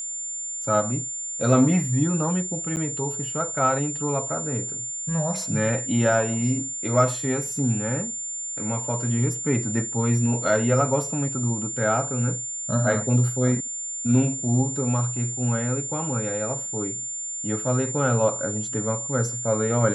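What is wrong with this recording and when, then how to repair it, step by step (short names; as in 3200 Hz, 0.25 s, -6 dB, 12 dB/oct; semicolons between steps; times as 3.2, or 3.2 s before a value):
tone 7200 Hz -29 dBFS
2.76–2.77 gap 9.2 ms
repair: notch 7200 Hz, Q 30; interpolate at 2.76, 9.2 ms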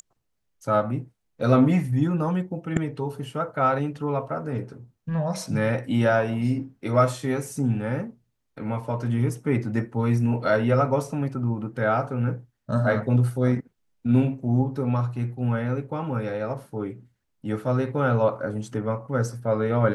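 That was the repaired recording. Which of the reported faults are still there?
none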